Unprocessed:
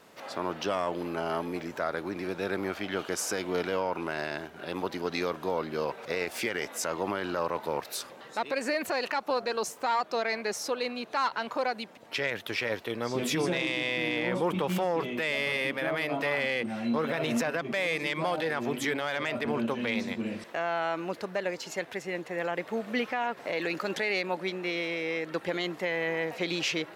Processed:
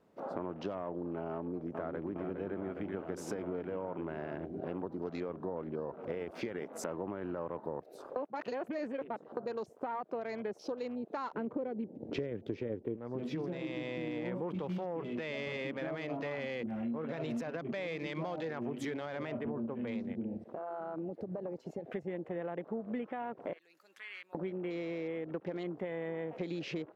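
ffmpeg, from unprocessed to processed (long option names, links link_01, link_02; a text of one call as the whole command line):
ffmpeg -i in.wav -filter_complex "[0:a]asplit=2[link_01][link_02];[link_02]afade=type=in:start_time=1.33:duration=0.01,afade=type=out:start_time=2.14:duration=0.01,aecho=0:1:410|820|1230|1640|2050|2460|2870|3280|3690|4100|4510|4920:0.473151|0.402179|0.341852|0.290574|0.246988|0.20994|0.178449|0.151681|0.128929|0.10959|0.0931514|0.0791787[link_03];[link_01][link_03]amix=inputs=2:normalize=0,asplit=3[link_04][link_05][link_06];[link_04]afade=type=out:start_time=11.34:duration=0.02[link_07];[link_05]lowshelf=frequency=570:width_type=q:width=1.5:gain=10.5,afade=type=in:start_time=11.34:duration=0.02,afade=type=out:start_time=12.95:duration=0.02[link_08];[link_06]afade=type=in:start_time=12.95:duration=0.02[link_09];[link_07][link_08][link_09]amix=inputs=3:normalize=0,asettb=1/sr,asplit=3[link_10][link_11][link_12];[link_10]atrim=end=14.254[link_13];[link_11]atrim=start=14.25:end=19.06,asetpts=PTS-STARTPTS,afade=type=in:duration=0.004:curve=qsin,afade=type=out:start_time=4.806:duration=0.004:curve=qsin,equalizer=frequency=5800:width=0.33:gain=6.5[link_14];[link_12]atrim=start=19.056[link_15];[link_13][link_14]acrossfade=duration=0.004:curve1=hsin:curve2=qsin[link_16];[link_16][link_15]acrossfade=duration=0.004:curve1=qsin:curve2=hsin,asplit=3[link_17][link_18][link_19];[link_17]afade=type=out:start_time=20.37:duration=0.02[link_20];[link_18]acompressor=threshold=-42dB:ratio=2.5:attack=3.2:release=140:knee=1:detection=peak,afade=type=in:start_time=20.37:duration=0.02,afade=type=out:start_time=21.84:duration=0.02[link_21];[link_19]afade=type=in:start_time=21.84:duration=0.02[link_22];[link_20][link_21][link_22]amix=inputs=3:normalize=0,asettb=1/sr,asplit=3[link_23][link_24][link_25];[link_23]atrim=end=23.534[link_26];[link_24]atrim=start=23.53:end=24.35,asetpts=PTS-STARTPTS,afade=type=in:duration=0.004:curve=qsin,afade=type=out:start_time=0.816:duration=0.004:curve=qsin,aderivative[link_27];[link_25]atrim=start=24.346[link_28];[link_26][link_27]acrossfade=duration=0.004:curve1=hsin:curve2=qsin[link_29];[link_29][link_28]acrossfade=duration=0.004:curve1=qsin:curve2=hsin,asplit=3[link_30][link_31][link_32];[link_30]atrim=end=8.162[link_33];[link_31]atrim=start=8.158:end=9.372,asetpts=PTS-STARTPTS,areverse[link_34];[link_32]atrim=start=9.368[link_35];[link_33][link_34]acrossfade=duration=0.004:curve1=hsin:curve2=hsin[link_36];[link_36][link_35]acrossfade=duration=0.004:curve1=hsin:curve2=hsin,afwtdn=0.01,tiltshelf=frequency=970:gain=9,acompressor=threshold=-37dB:ratio=6,volume=1dB" out.wav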